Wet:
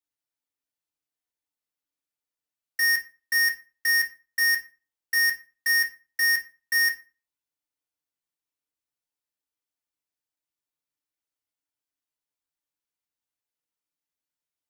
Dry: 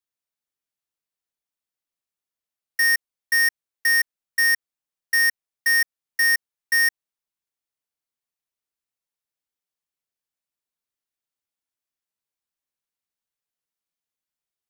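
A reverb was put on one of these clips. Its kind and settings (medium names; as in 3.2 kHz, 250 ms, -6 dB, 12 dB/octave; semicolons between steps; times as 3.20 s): FDN reverb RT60 0.33 s, low-frequency decay 1.1×, high-frequency decay 0.8×, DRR 1.5 dB; trim -4.5 dB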